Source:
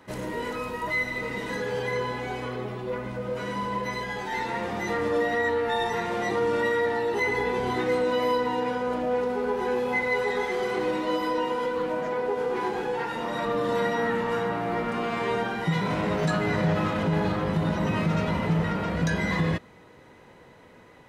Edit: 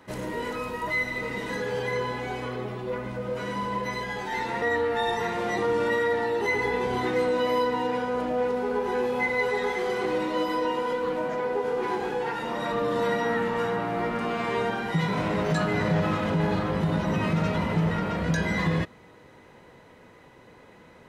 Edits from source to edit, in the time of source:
4.62–5.35 s: delete

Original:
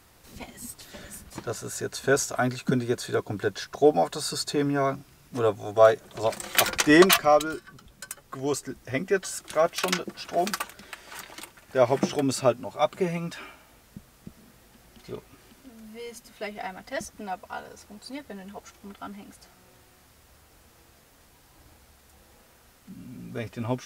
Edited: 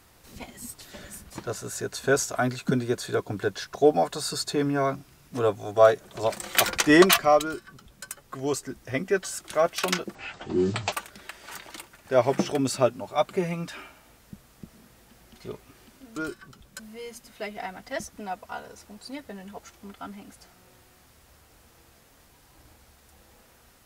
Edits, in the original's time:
7.42–8.05 s: copy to 15.80 s
10.15–10.56 s: speed 53%

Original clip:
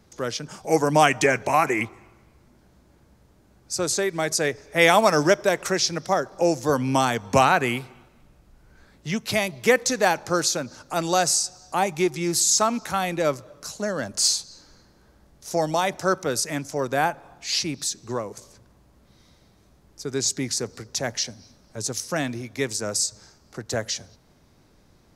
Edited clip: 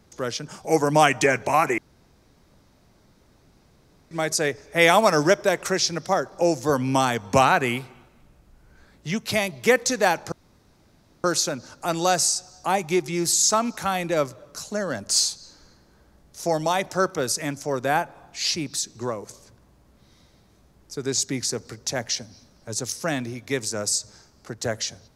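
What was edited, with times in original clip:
1.78–4.11 s: room tone
10.32 s: insert room tone 0.92 s

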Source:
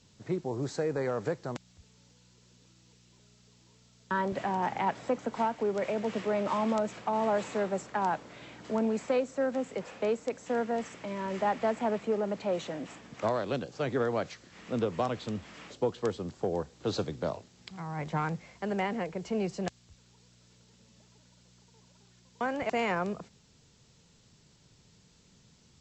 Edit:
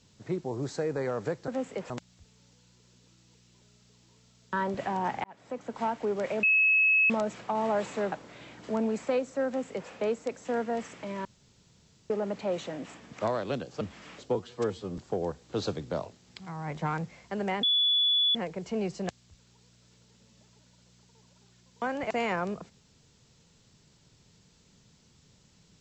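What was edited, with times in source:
4.82–5.51 s: fade in
6.01–6.68 s: bleep 2.58 kHz -19.5 dBFS
7.70–8.13 s: delete
9.48–9.90 s: copy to 1.48 s
11.26–12.11 s: room tone
13.82–15.33 s: delete
15.87–16.29 s: stretch 1.5×
18.94 s: add tone 3.43 kHz -21.5 dBFS 0.72 s

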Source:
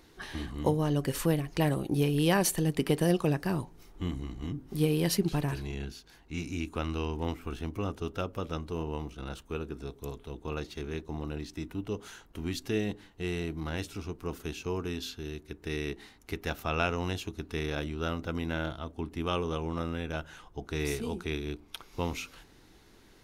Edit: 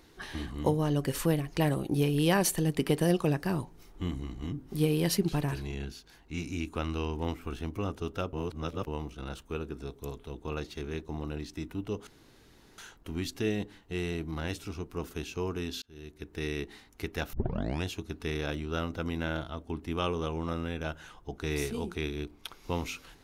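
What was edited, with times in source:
8.33–8.87 s: reverse
12.07 s: insert room tone 0.71 s
15.11–15.55 s: fade in
16.62 s: tape start 0.51 s

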